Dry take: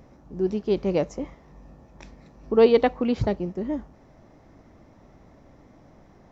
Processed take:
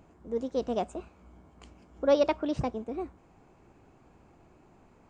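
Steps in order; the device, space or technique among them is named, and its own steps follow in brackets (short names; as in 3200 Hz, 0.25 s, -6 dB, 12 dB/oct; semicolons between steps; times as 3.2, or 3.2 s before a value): nightcore (varispeed +24%); gain -6.5 dB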